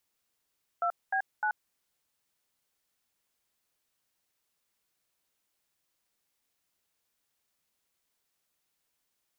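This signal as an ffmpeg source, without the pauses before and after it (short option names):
-f lavfi -i "aevalsrc='0.0376*clip(min(mod(t,0.304),0.082-mod(t,0.304))/0.002,0,1)*(eq(floor(t/0.304),0)*(sin(2*PI*697*mod(t,0.304))+sin(2*PI*1336*mod(t,0.304)))+eq(floor(t/0.304),1)*(sin(2*PI*770*mod(t,0.304))+sin(2*PI*1633*mod(t,0.304)))+eq(floor(t/0.304),2)*(sin(2*PI*852*mod(t,0.304))+sin(2*PI*1477*mod(t,0.304))))':d=0.912:s=44100"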